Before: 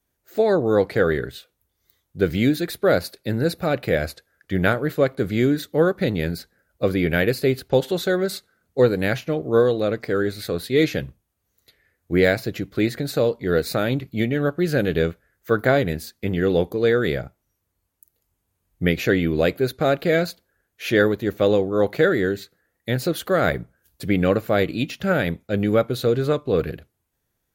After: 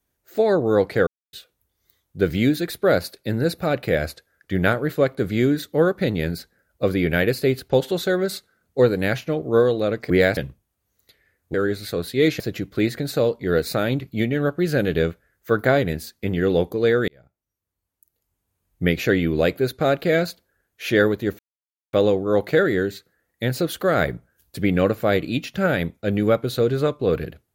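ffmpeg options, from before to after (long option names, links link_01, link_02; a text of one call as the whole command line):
ffmpeg -i in.wav -filter_complex "[0:a]asplit=9[link_01][link_02][link_03][link_04][link_05][link_06][link_07][link_08][link_09];[link_01]atrim=end=1.07,asetpts=PTS-STARTPTS,afade=type=out:start_time=1.066:duration=0.004:curve=hsin[link_10];[link_02]atrim=start=1.07:end=1.33,asetpts=PTS-STARTPTS,volume=0[link_11];[link_03]atrim=start=1.33:end=10.102,asetpts=PTS-STARTPTS,afade=type=in:duration=0.004:curve=hsin[link_12];[link_04]atrim=start=12.128:end=12.402[link_13];[link_05]atrim=start=10.958:end=12.132[link_14];[link_06]atrim=start=10.098:end=10.962[link_15];[link_07]atrim=start=12.398:end=17.08,asetpts=PTS-STARTPTS,afade=type=out:start_time=4.678:duration=0.004:curve=hsin[link_16];[link_08]atrim=start=17.08:end=21.39,asetpts=PTS-STARTPTS,afade=type=in:duration=1.75,afade=type=out:start_time=4.306:duration=0.004:curve=hsin,apad=pad_dur=0.54[link_17];[link_09]atrim=start=21.39,asetpts=PTS-STARTPTS,afade=type=in:duration=0.004:curve=hsin[link_18];[link_10][link_11][link_12]concat=n=3:v=0:a=1[link_19];[link_19][link_13]acrossfade=duration=0.004:curve1=hsin:curve2=hsin[link_20];[link_20][link_14]acrossfade=duration=0.004:curve1=hsin:curve2=hsin[link_21];[link_21][link_15]acrossfade=duration=0.004:curve1=hsin:curve2=hsin[link_22];[link_16][link_17][link_18]concat=n=3:v=0:a=1[link_23];[link_22][link_23]acrossfade=duration=0.004:curve1=hsin:curve2=hsin" out.wav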